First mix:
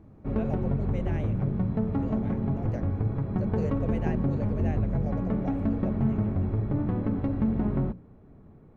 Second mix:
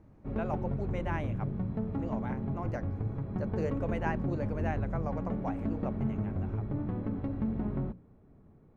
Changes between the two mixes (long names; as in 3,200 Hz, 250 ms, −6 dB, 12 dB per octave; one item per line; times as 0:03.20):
speech: remove phaser with its sweep stopped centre 300 Hz, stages 6
background −6.5 dB